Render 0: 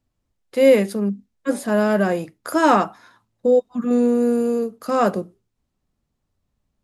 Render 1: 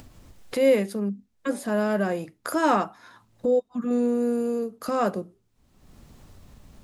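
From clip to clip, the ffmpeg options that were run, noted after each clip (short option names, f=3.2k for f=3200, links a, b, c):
-af "acompressor=mode=upward:threshold=-18dB:ratio=2.5,volume=-6dB"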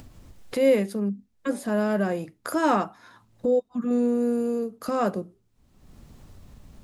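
-af "lowshelf=f=330:g=3.5,volume=-1.5dB"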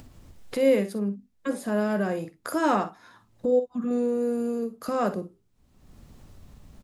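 -af "aecho=1:1:48|60:0.2|0.178,volume=-1.5dB"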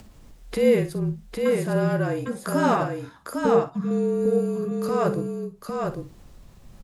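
-af "afreqshift=-39,aecho=1:1:804:0.631,volume=2dB"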